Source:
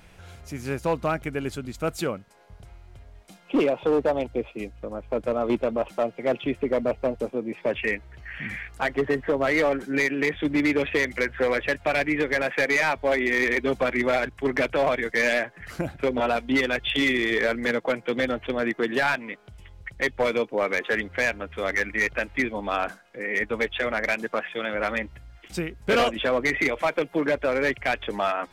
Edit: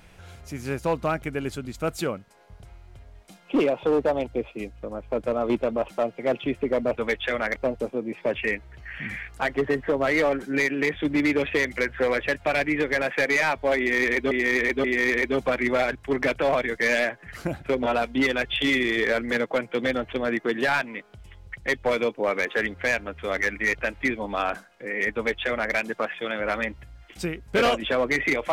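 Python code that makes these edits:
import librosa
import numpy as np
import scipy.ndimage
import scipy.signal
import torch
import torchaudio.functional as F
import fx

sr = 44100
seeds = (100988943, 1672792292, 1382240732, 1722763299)

y = fx.edit(x, sr, fx.repeat(start_s=13.18, length_s=0.53, count=3),
    fx.duplicate(start_s=23.48, length_s=0.6, to_s=6.96), tone=tone)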